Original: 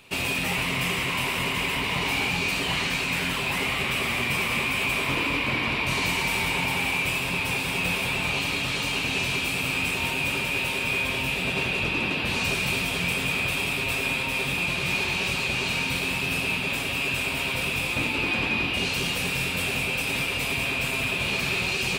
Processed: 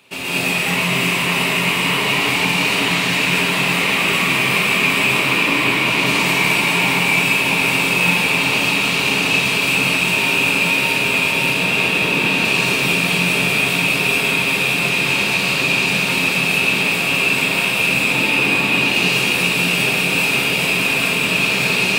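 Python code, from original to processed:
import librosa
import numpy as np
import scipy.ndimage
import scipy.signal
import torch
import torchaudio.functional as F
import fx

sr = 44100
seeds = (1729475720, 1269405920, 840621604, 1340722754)

p1 = scipy.signal.sosfilt(scipy.signal.butter(2, 150.0, 'highpass', fs=sr, output='sos'), x)
p2 = p1 + fx.echo_diffused(p1, sr, ms=628, feedback_pct=74, wet_db=-6, dry=0)
y = fx.rev_gated(p2, sr, seeds[0], gate_ms=250, shape='rising', drr_db=-7.0)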